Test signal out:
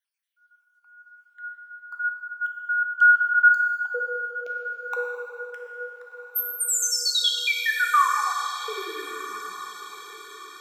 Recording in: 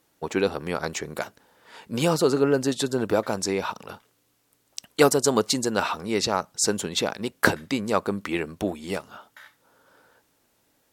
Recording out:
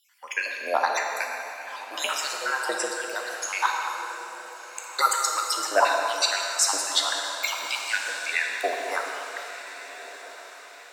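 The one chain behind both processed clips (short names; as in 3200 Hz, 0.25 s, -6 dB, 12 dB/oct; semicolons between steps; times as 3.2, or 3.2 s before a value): random spectral dropouts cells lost 62%; low shelf 410 Hz +6.5 dB; in parallel at -1 dB: compressor, threshold -31 dBFS; on the sum: LFO high-pass sine 1 Hz 690–2000 Hz; on a send: diffused feedback echo 1.406 s, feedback 43%, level -14 dB; on the sum: plate-style reverb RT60 2.9 s, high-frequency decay 0.8×, DRR 0.5 dB; frequency shift +83 Hz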